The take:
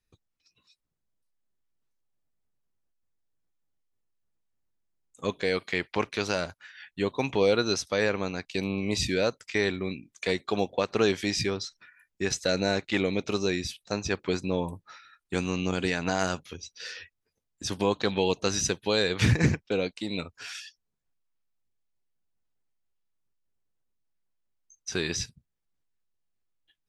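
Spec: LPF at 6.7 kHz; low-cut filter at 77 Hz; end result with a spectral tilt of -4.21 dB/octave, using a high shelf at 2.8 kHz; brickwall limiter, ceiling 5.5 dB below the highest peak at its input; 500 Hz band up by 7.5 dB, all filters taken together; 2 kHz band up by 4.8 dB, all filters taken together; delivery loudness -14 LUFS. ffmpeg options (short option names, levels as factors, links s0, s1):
-af "highpass=77,lowpass=6700,equalizer=f=500:t=o:g=8.5,equalizer=f=2000:t=o:g=8,highshelf=f=2800:g=-6,volume=3.55,alimiter=limit=0.944:level=0:latency=1"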